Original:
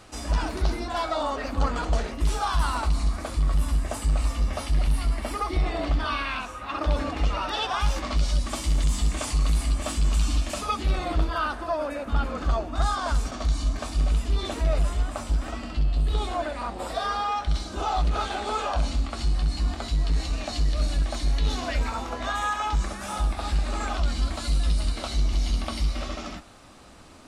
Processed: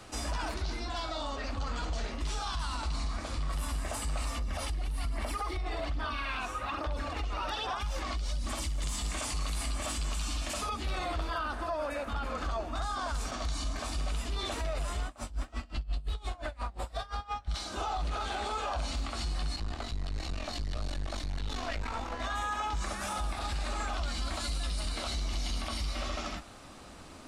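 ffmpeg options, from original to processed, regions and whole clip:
ffmpeg -i in.wav -filter_complex "[0:a]asettb=1/sr,asplit=3[link_01][link_02][link_03];[link_01]atrim=end=0.544[link_04];[link_02]atrim=start=0.54:end=3.5,asetpts=PTS-STARTPTS,afade=type=in:duration=0.004:curve=qsin,afade=type=out:start_time=2.956:duration=0.004:curve=qsin,lowpass=6600,asplit=2[link_05][link_06];[link_06]adelay=47,volume=-12dB[link_07];[link_05][link_07]amix=inputs=2:normalize=0,atrim=end_sample=130536,acrossover=split=240|3000[link_08][link_09][link_10];[link_09]acompressor=threshold=-38dB:ratio=3:attack=3.2:release=140:knee=2.83:detection=peak[link_11];[link_08][link_11][link_10]amix=inputs=3:normalize=0[link_12];[link_03]atrim=start=3.496[link_13];[link_04][link_12]acrossfade=duration=0.004:curve1=hsin:curve2=qsin[link_14];[link_14][link_13]acrossfade=duration=0.004:curve1=qsin:curve2=hsin,asettb=1/sr,asplit=3[link_15][link_16][link_17];[link_15]atrim=end=4.384[link_18];[link_16]atrim=start=4.38:end=8.82,asetpts=PTS-STARTPTS,afade=type=in:duration=0.004:curve=qsin,afade=type=out:start_time=4.436:duration=0.004:curve=qsin,acompressor=threshold=-29dB:ratio=12:attack=3.2:release=140:knee=1:detection=peak,aphaser=in_gain=1:out_gain=1:delay=2.8:decay=0.39:speed=1.2:type=sinusoidal[link_19];[link_17]atrim=start=8.816[link_20];[link_18][link_19]acrossfade=duration=0.004:curve1=hsin:curve2=qsin[link_21];[link_21][link_20]acrossfade=duration=0.004:curve1=qsin:curve2=hsin,asettb=1/sr,asplit=3[link_22][link_23][link_24];[link_22]atrim=end=15.064[link_25];[link_23]atrim=start=15.06:end=17.54,asetpts=PTS-STARTPTS,afade=type=in:duration=0.004:curve=qsin,afade=type=out:start_time=2.476:duration=0.004:curve=qsin,asubboost=boost=8.5:cutoff=120,aeval=exprs='val(0)*pow(10,-27*(0.5-0.5*cos(2*PI*5.7*n/s))/20)':channel_layout=same[link_26];[link_24]atrim=start=17.536[link_27];[link_25][link_26]acrossfade=duration=0.004:curve1=hsin:curve2=qsin[link_28];[link_28][link_27]acrossfade=duration=0.004:curve1=qsin:curve2=hsin,asettb=1/sr,asplit=3[link_29][link_30][link_31];[link_29]atrim=end=19.564[link_32];[link_30]atrim=start=19.56:end=22.2,asetpts=PTS-STARTPTS,afade=type=in:duration=0.004:curve=qsin,afade=type=out:start_time=2.636:duration=0.004:curve=qsin,highshelf=frequency=8800:gain=-11.5,aeval=exprs='(tanh(22.4*val(0)+0.75)-tanh(0.75))/22.4':channel_layout=same[link_33];[link_31]atrim=start=22.196[link_34];[link_32][link_33]acrossfade=duration=0.004:curve1=hsin:curve2=qsin[link_35];[link_35][link_34]acrossfade=duration=0.004:curve1=qsin:curve2=hsin,acrossover=split=100|570[link_36][link_37][link_38];[link_36]acompressor=threshold=-31dB:ratio=4[link_39];[link_37]acompressor=threshold=-43dB:ratio=4[link_40];[link_38]acompressor=threshold=-31dB:ratio=4[link_41];[link_39][link_40][link_41]amix=inputs=3:normalize=0,alimiter=level_in=1.5dB:limit=-24dB:level=0:latency=1:release=24,volume=-1.5dB" out.wav

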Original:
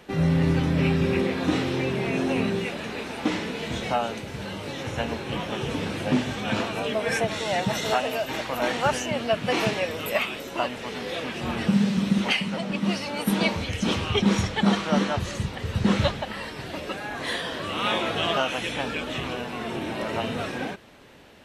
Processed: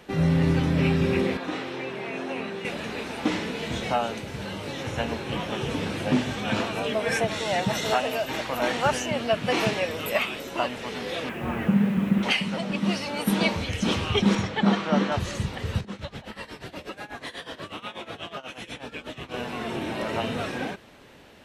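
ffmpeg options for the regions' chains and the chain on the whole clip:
ffmpeg -i in.wav -filter_complex "[0:a]asettb=1/sr,asplit=3[link_01][link_02][link_03];[link_01]atrim=end=1.374[link_04];[link_02]atrim=start=1.37:end=2.65,asetpts=PTS-STARTPTS,afade=type=in:duration=0.004:curve=qsin,afade=type=out:start_time=1.276:duration=0.004:curve=qsin,highpass=frequency=730:poles=1,highshelf=frequency=3500:gain=-11[link_05];[link_03]atrim=start=2.646[link_06];[link_04][link_05]acrossfade=duration=0.004:curve1=hsin:curve2=qsin[link_07];[link_07][link_06]acrossfade=duration=0.004:curve1=qsin:curve2=hsin,asettb=1/sr,asplit=3[link_08][link_09][link_10];[link_08]atrim=end=11.294[link_11];[link_09]atrim=start=11.29:end=12.23,asetpts=PTS-STARTPTS,afade=type=in:duration=0.004:curve=qsin,afade=type=out:start_time=0.936:duration=0.004:curve=qsin,lowpass=frequency=2500:width=0.5412,lowpass=frequency=2500:width=1.3066,acrusher=bits=7:mix=0:aa=0.5[link_12];[link_10]atrim=start=12.226[link_13];[link_11][link_12]acrossfade=duration=0.004:curve1=hsin:curve2=qsin[link_14];[link_14][link_13]acrossfade=duration=0.004:curve1=qsin:curve2=hsin,asettb=1/sr,asplit=3[link_15][link_16][link_17];[link_15]atrim=end=14.354[link_18];[link_16]atrim=start=14.35:end=15.12,asetpts=PTS-STARTPTS,afade=type=in:duration=0.004:curve=qsin,afade=type=out:start_time=0.766:duration=0.004:curve=qsin,highpass=120,aemphasis=mode=reproduction:type=50fm[link_19];[link_17]atrim=start=15.116[link_20];[link_18][link_19]acrossfade=duration=0.004:curve1=hsin:curve2=qsin[link_21];[link_21][link_20]acrossfade=duration=0.004:curve1=qsin:curve2=hsin,asettb=1/sr,asplit=3[link_22][link_23][link_24];[link_22]atrim=end=15.804[link_25];[link_23]atrim=start=15.8:end=19.34,asetpts=PTS-STARTPTS,afade=type=in:duration=0.004:curve=qsin,afade=type=out:start_time=3.536:duration=0.004:curve=qsin,acompressor=threshold=-30dB:ratio=5:attack=3.2:release=140:knee=1:detection=peak,tremolo=f=8.2:d=0.87[link_26];[link_24]atrim=start=19.336[link_27];[link_25][link_26]acrossfade=duration=0.004:curve1=hsin:curve2=qsin[link_28];[link_28][link_27]acrossfade=duration=0.004:curve1=qsin:curve2=hsin" out.wav

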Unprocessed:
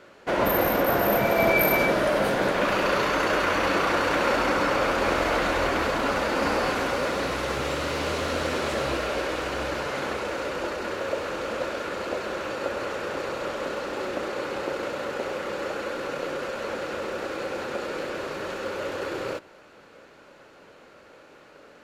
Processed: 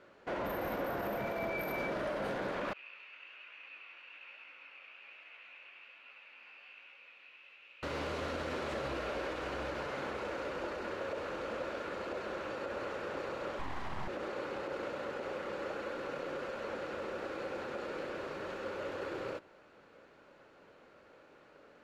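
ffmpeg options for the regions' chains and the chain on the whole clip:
ffmpeg -i in.wav -filter_complex "[0:a]asettb=1/sr,asplit=3[link_01][link_02][link_03];[link_01]atrim=end=2.734[link_04];[link_02]atrim=start=2.73:end=7.83,asetpts=PTS-STARTPTS,afade=type=in:duration=0.004:curve=qsin,afade=type=out:start_time=5.096:duration=0.004:curve=qsin,bandpass=frequency=2600:width_type=q:width=9.9,flanger=delay=16:depth=7:speed=1.2[link_05];[link_03]atrim=start=7.826[link_06];[link_04][link_05]acrossfade=duration=0.004:curve1=hsin:curve2=qsin[link_07];[link_07][link_06]acrossfade=duration=0.004:curve1=qsin:curve2=hsin,asettb=1/sr,asplit=3[link_08][link_09][link_10];[link_08]atrim=end=13.594[link_11];[link_09]atrim=start=13.59:end=14.08,asetpts=PTS-STARTPTS,afade=type=in:duration=0.004:curve=qsin,afade=type=out:start_time=0.486:duration=0.004:curve=qsin,equalizer=frequency=310:width_type=o:width=2.8:gain=7,aeval=exprs='abs(val(0))':channel_layout=same[link_12];[link_10]atrim=start=14.076[link_13];[link_11][link_12]acrossfade=duration=0.004:curve1=hsin:curve2=qsin[link_14];[link_14][link_13]acrossfade=duration=0.004:curve1=qsin:curve2=hsin,highshelf=frequency=5400:gain=-11,alimiter=limit=-20dB:level=0:latency=1:release=45,volume=-8.5dB" out.wav

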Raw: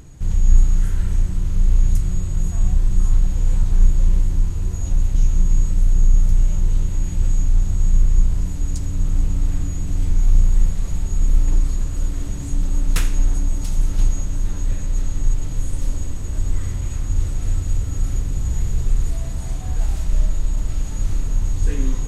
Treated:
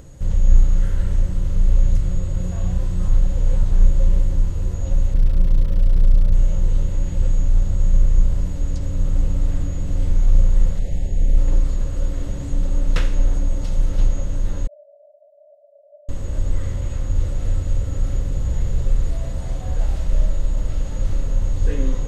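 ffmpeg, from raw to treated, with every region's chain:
ffmpeg -i in.wav -filter_complex "[0:a]asettb=1/sr,asplit=3[link_01][link_02][link_03];[link_01]atrim=end=2.374[link_04];[link_02]atrim=start=2.37:end=3.08,asetpts=PTS-STARTPTS,afade=type=in:duration=0.004:curve=qsin,afade=type=out:start_time=0.706:duration=0.004:curve=qsin,highpass=frequency=77:poles=1,asplit=2[link_05][link_06];[link_06]adelay=33,volume=-5dB[link_07];[link_05][link_07]amix=inputs=2:normalize=0,atrim=end_sample=31311[link_08];[link_03]atrim=start=3.076[link_09];[link_04][link_08]acrossfade=duration=0.004:curve1=hsin:curve2=qsin[link_10];[link_10][link_09]acrossfade=duration=0.004:curve1=qsin:curve2=hsin,asettb=1/sr,asplit=3[link_11][link_12][link_13];[link_11]atrim=end=5.144[link_14];[link_12]atrim=start=5.14:end=6.34,asetpts=PTS-STARTPTS,afade=type=in:duration=0.004:curve=qsin,afade=type=out:start_time=1.196:duration=0.004:curve=qsin,lowpass=1300,acrusher=bits=8:dc=4:mix=0:aa=0.000001,bandreject=frequency=820:width=12[link_15];[link_13]atrim=start=6.336[link_16];[link_14][link_15]acrossfade=duration=0.004:curve1=hsin:curve2=qsin[link_17];[link_17][link_16]acrossfade=duration=0.004:curve1=qsin:curve2=hsin,asettb=1/sr,asplit=3[link_18][link_19][link_20];[link_18]atrim=end=10.794[link_21];[link_19]atrim=start=10.79:end=11.38,asetpts=PTS-STARTPTS,afade=type=in:duration=0.004:curve=qsin,afade=type=out:start_time=0.586:duration=0.004:curve=qsin,acrossover=split=3900[link_22][link_23];[link_23]acompressor=threshold=-48dB:ratio=4:attack=1:release=60[link_24];[link_22][link_24]amix=inputs=2:normalize=0,asuperstop=centerf=1200:order=8:qfactor=1.4[link_25];[link_20]atrim=start=11.376[link_26];[link_21][link_25]acrossfade=duration=0.004:curve1=hsin:curve2=qsin[link_27];[link_27][link_26]acrossfade=duration=0.004:curve1=qsin:curve2=hsin,asettb=1/sr,asplit=3[link_28][link_29][link_30];[link_28]atrim=end=14.674[link_31];[link_29]atrim=start=14.67:end=16.09,asetpts=PTS-STARTPTS,afade=type=in:duration=0.004:curve=qsin,afade=type=out:start_time=1.416:duration=0.004:curve=qsin,asuperpass=centerf=640:order=20:qfactor=4.4,aecho=1:1:2.1:0.7,atrim=end_sample=62622[link_32];[link_30]atrim=start=16.086[link_33];[link_31][link_32]acrossfade=duration=0.004:curve1=hsin:curve2=qsin[link_34];[link_34][link_33]acrossfade=duration=0.004:curve1=qsin:curve2=hsin,bandreject=frequency=2400:width=19,acrossover=split=5100[link_35][link_36];[link_36]acompressor=threshold=-54dB:ratio=4:attack=1:release=60[link_37];[link_35][link_37]amix=inputs=2:normalize=0,equalizer=frequency=540:width=5.3:gain=13" out.wav

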